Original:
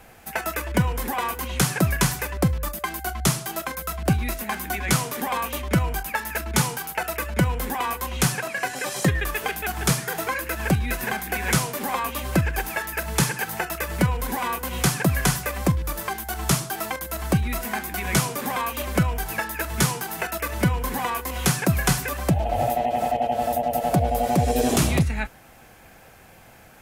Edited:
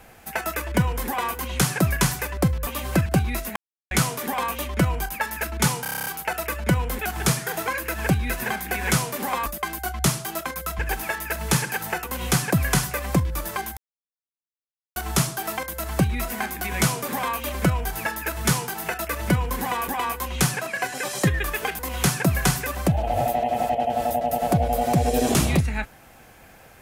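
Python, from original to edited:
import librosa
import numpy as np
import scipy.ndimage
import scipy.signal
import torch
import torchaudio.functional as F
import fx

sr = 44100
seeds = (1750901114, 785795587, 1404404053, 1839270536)

y = fx.edit(x, sr, fx.swap(start_s=2.67, length_s=1.33, other_s=12.07, other_length_s=0.39),
    fx.silence(start_s=4.5, length_s=0.35),
    fx.stutter(start_s=6.76, slice_s=0.03, count=9),
    fx.move(start_s=7.69, length_s=1.91, to_s=21.21),
    fx.cut(start_s=13.71, length_s=0.85),
    fx.insert_silence(at_s=16.29, length_s=1.19), tone=tone)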